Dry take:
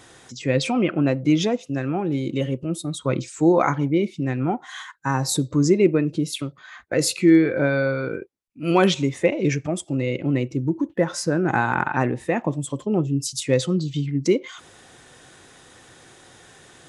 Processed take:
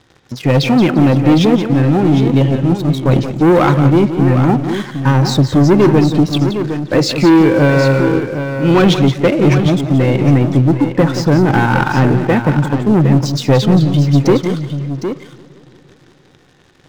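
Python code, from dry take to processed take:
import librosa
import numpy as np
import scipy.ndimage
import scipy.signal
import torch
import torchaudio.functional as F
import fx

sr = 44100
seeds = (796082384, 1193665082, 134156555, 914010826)

p1 = scipy.signal.sosfilt(scipy.signal.butter(4, 5400.0, 'lowpass', fs=sr, output='sos'), x)
p2 = fx.low_shelf(p1, sr, hz=310.0, db=9.0)
p3 = fx.notch(p2, sr, hz=670.0, q=12.0)
p4 = fx.leveller(p3, sr, passes=3)
p5 = p4 + fx.echo_multitap(p4, sr, ms=(176, 759), db=(-10.5, -9.0), dry=0)
p6 = fx.echo_warbled(p5, sr, ms=173, feedback_pct=74, rate_hz=2.8, cents=197, wet_db=-22)
y = p6 * librosa.db_to_amplitude(-2.5)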